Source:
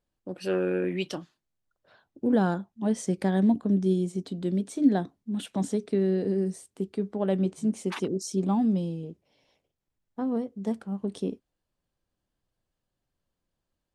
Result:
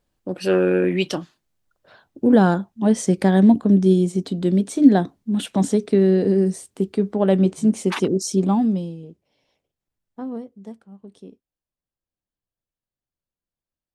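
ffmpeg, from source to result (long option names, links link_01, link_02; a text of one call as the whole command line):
ffmpeg -i in.wav -af "volume=9dB,afade=type=out:start_time=8.28:duration=0.68:silence=0.316228,afade=type=out:start_time=10.23:duration=0.58:silence=0.316228" out.wav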